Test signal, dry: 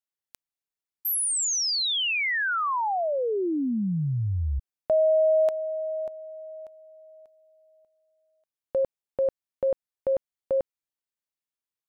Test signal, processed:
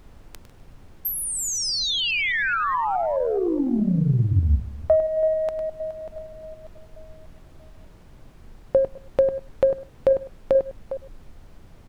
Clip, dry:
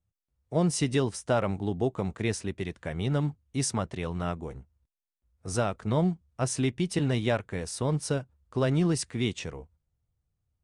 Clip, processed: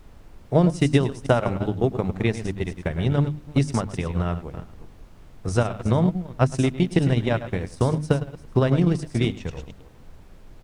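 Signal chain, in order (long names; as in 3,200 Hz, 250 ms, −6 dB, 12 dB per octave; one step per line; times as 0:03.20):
delay that plays each chunk backwards 211 ms, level −11.5 dB
RIAA equalisation playback
on a send: single-tap delay 104 ms −8.5 dB
on the sum: transient designer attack +8 dB, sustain −12 dB
spectral tilt +2.5 dB per octave
background noise brown −45 dBFS
mains-hum notches 50/100/150/200/250/300 Hz
level +1.5 dB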